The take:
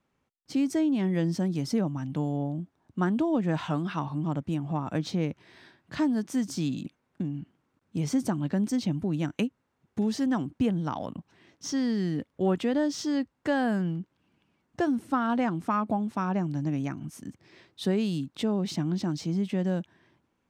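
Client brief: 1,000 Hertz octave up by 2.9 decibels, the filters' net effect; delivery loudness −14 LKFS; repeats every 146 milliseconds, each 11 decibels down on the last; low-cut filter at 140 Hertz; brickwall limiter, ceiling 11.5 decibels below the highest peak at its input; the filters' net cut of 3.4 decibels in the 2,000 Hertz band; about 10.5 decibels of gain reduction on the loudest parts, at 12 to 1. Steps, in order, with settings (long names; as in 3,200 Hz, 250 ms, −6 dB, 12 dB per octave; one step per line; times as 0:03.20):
high-pass filter 140 Hz
parametric band 1,000 Hz +5.5 dB
parametric band 2,000 Hz −7 dB
downward compressor 12 to 1, threshold −32 dBFS
brickwall limiter −32.5 dBFS
repeating echo 146 ms, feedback 28%, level −11 dB
level +26.5 dB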